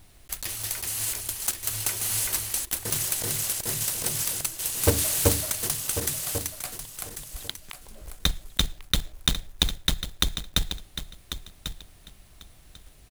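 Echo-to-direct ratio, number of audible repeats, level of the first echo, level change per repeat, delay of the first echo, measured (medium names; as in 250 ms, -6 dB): -10.5 dB, 2, -10.5 dB, -15.0 dB, 1094 ms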